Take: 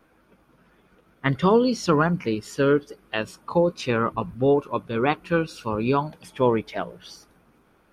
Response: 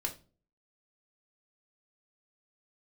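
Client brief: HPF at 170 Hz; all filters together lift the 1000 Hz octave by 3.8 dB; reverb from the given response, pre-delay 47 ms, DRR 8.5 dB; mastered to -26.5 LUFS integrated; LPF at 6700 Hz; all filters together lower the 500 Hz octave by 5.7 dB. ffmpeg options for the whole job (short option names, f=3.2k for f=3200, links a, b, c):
-filter_complex "[0:a]highpass=170,lowpass=6.7k,equalizer=f=500:t=o:g=-8,equalizer=f=1k:t=o:g=6.5,asplit=2[a][b];[1:a]atrim=start_sample=2205,adelay=47[c];[b][c]afir=irnorm=-1:irlink=0,volume=-10dB[d];[a][d]amix=inputs=2:normalize=0,volume=-1.5dB"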